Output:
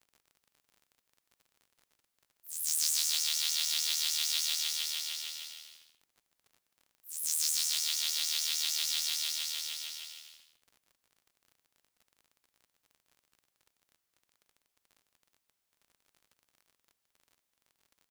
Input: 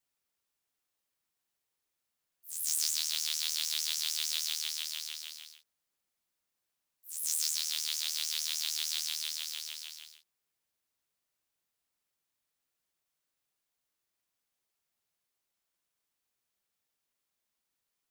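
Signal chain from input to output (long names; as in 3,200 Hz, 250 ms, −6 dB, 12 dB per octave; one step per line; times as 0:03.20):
on a send: bouncing-ball delay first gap 150 ms, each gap 0.7×, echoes 5
on the sum: surface crackle 41 per second −49 dBFS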